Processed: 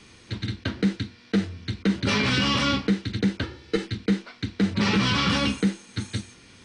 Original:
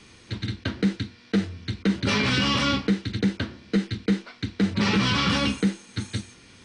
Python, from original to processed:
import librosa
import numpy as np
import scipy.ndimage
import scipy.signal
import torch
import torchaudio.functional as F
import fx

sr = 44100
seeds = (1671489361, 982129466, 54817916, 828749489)

y = fx.comb(x, sr, ms=2.3, depth=0.8, at=(3.43, 3.86))